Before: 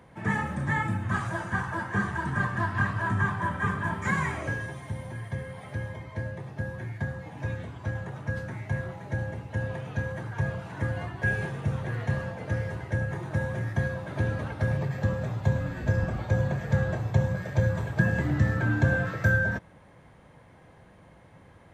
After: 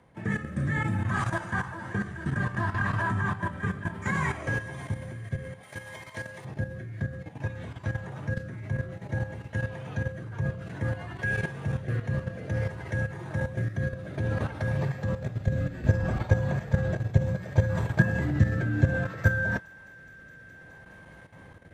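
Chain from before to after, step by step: rotary speaker horn 0.6 Hz; on a send: thin delay 0.209 s, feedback 81%, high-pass 1700 Hz, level -17 dB; on the sum: level quantiser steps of 11 dB; 5.63–6.45 tilt +3.5 dB/oct; gain +6 dB

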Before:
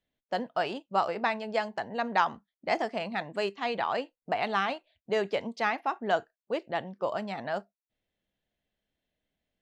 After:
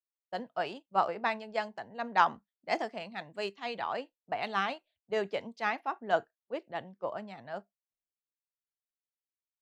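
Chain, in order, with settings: three-band expander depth 100%; gain -4.5 dB

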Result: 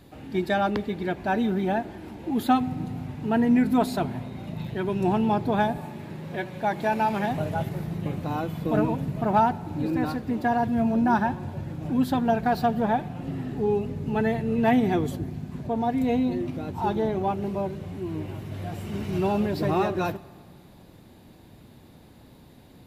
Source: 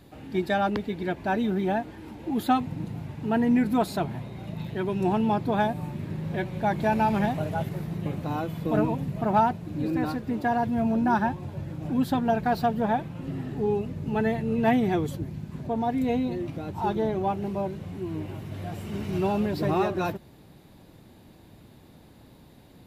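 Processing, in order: 5.77–7.31 HPF 290 Hz 6 dB/oct; on a send: reverb RT60 1.9 s, pre-delay 4 ms, DRR 18 dB; on the sum: gain +1 dB

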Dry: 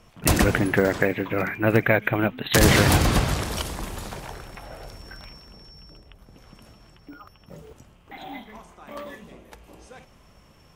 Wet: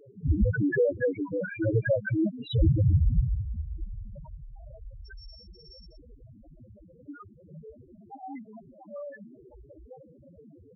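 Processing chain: band noise 79–670 Hz -47 dBFS; speakerphone echo 0.19 s, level -23 dB; loudest bins only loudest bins 2; gain +2.5 dB

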